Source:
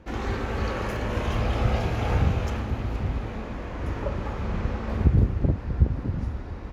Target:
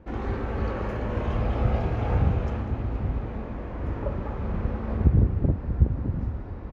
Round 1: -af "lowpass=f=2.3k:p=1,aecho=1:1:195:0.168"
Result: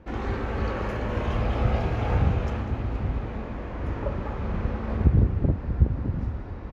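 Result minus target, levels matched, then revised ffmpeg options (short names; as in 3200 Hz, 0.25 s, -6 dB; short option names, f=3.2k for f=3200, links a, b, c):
2000 Hz band +3.5 dB
-af "lowpass=f=1.1k:p=1,aecho=1:1:195:0.168"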